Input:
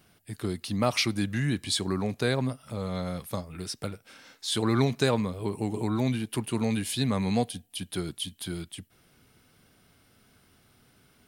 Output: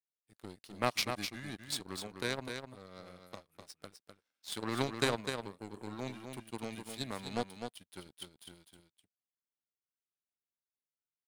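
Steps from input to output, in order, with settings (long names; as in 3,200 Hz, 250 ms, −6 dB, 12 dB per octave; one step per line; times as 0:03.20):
low-shelf EQ 170 Hz −9.5 dB
power curve on the samples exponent 2
on a send: single-tap delay 253 ms −6.5 dB
on the sum: level +1 dB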